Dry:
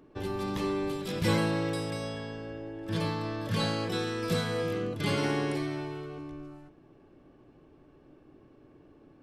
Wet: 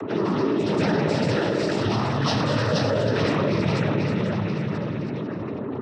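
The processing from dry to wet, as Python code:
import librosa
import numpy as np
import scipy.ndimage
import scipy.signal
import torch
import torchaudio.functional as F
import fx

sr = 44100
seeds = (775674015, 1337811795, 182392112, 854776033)

y = fx.echo_feedback(x, sr, ms=778, feedback_pct=30, wet_db=-4.0)
y = fx.spec_topn(y, sr, count=64)
y = fx.stretch_vocoder_free(y, sr, factor=0.63)
y = y + 10.0 ** (-9.0 / 20.0) * np.pad(y, (int(321 * sr / 1000.0), 0))[:len(y)]
y = fx.noise_vocoder(y, sr, seeds[0], bands=12)
y = fx.env_flatten(y, sr, amount_pct=70)
y = F.gain(torch.from_numpy(y), 6.5).numpy()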